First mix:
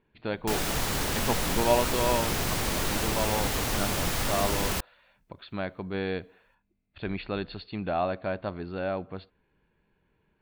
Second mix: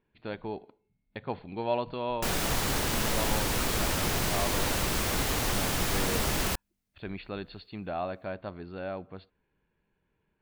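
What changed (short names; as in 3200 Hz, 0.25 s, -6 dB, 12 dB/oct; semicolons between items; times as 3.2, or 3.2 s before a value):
speech -5.5 dB; background: entry +1.75 s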